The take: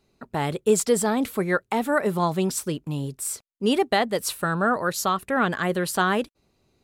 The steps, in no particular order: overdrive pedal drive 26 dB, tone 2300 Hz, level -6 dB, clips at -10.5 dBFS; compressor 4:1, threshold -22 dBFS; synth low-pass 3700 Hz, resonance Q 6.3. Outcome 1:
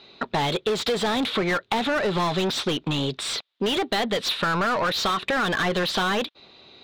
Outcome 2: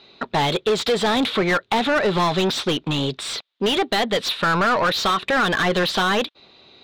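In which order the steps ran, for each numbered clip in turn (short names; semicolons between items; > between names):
synth low-pass > overdrive pedal > compressor; synth low-pass > compressor > overdrive pedal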